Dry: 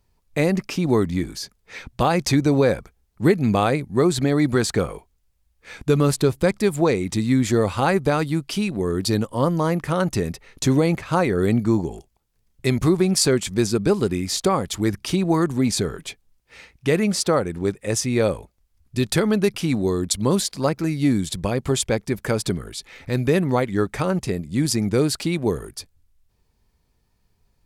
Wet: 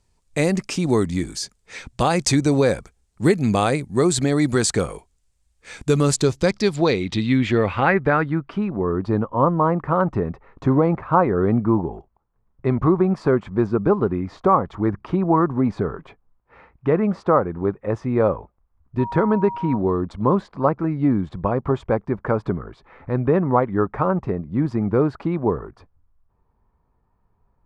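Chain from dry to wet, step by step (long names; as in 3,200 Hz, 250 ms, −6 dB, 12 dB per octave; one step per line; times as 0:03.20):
0:18.98–0:19.76: steady tone 950 Hz −35 dBFS
low-pass filter sweep 8,200 Hz → 1,100 Hz, 0:06.00–0:08.70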